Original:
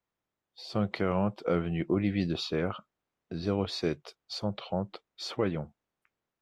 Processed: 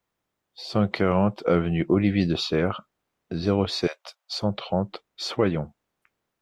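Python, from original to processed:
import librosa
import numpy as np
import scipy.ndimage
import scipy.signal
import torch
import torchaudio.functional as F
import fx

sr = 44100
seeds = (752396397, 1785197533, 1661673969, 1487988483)

y = fx.cheby1_highpass(x, sr, hz=560.0, order=5, at=(3.87, 4.39))
y = y * 10.0 ** (7.0 / 20.0)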